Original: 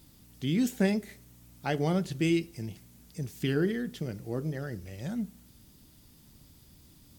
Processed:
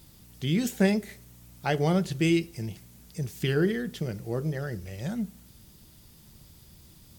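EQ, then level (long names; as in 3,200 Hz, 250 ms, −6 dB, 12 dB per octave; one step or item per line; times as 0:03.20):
parametric band 270 Hz −11.5 dB 0.21 octaves
+4.0 dB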